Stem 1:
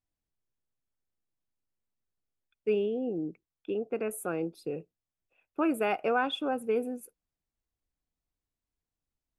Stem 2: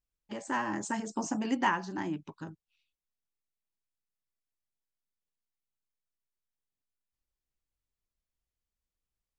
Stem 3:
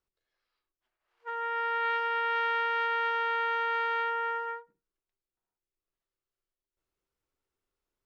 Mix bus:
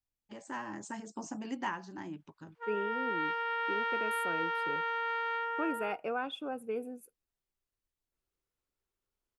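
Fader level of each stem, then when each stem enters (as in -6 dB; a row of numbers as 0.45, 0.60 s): -7.5, -8.0, -4.5 dB; 0.00, 0.00, 1.35 s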